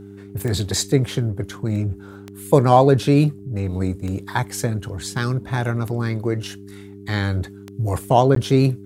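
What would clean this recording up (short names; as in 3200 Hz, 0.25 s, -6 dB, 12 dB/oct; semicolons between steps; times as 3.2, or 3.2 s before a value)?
de-click; de-hum 99.6 Hz, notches 4; interpolate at 8.35, 13 ms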